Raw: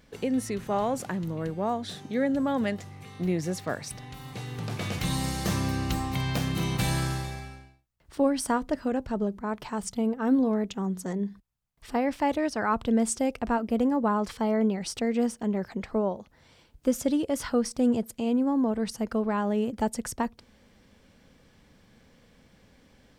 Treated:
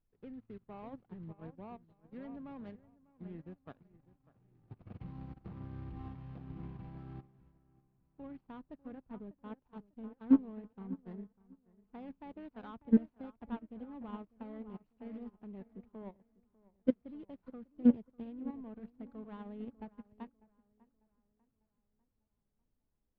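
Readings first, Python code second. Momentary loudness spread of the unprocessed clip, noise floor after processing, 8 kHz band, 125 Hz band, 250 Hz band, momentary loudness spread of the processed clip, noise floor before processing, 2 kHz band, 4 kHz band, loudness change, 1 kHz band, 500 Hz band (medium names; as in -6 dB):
8 LU, -81 dBFS, under -40 dB, -16.5 dB, -10.0 dB, 22 LU, -61 dBFS, under -20 dB, under -30 dB, -11.0 dB, -22.5 dB, -18.5 dB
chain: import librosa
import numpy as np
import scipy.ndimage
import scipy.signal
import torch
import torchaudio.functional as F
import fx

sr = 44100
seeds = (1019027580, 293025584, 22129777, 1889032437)

y = scipy.signal.medfilt(x, 25)
y = fx.peak_eq(y, sr, hz=570.0, db=-5.5, octaves=0.84)
y = fx.level_steps(y, sr, step_db=11)
y = fx.dmg_noise_colour(y, sr, seeds[0], colour='brown', level_db=-55.0)
y = fx.air_absorb(y, sr, metres=340.0)
y = fx.echo_wet_lowpass(y, sr, ms=597, feedback_pct=50, hz=2200.0, wet_db=-9.0)
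y = fx.upward_expand(y, sr, threshold_db=-43.0, expansion=2.5)
y = y * 10.0 ** (4.0 / 20.0)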